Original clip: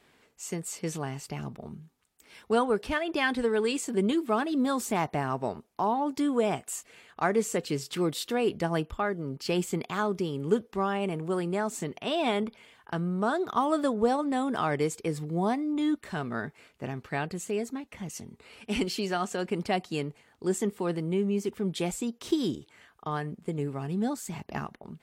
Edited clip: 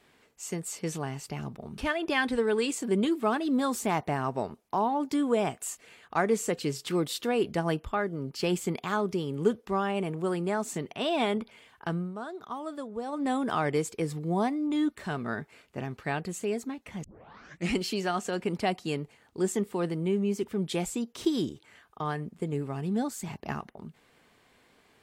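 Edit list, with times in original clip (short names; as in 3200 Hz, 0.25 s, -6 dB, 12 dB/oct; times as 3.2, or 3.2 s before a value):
1.78–2.84 cut
13.01–14.31 dip -11 dB, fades 0.19 s
18.1 tape start 0.72 s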